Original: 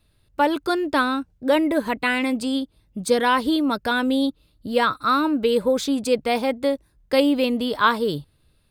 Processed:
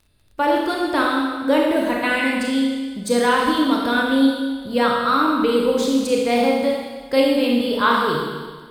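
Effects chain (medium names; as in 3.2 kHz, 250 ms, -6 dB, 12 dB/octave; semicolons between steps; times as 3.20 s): Schroeder reverb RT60 1.5 s, combs from 26 ms, DRR -2 dB; crackle 25 per s -42 dBFS; trim -1.5 dB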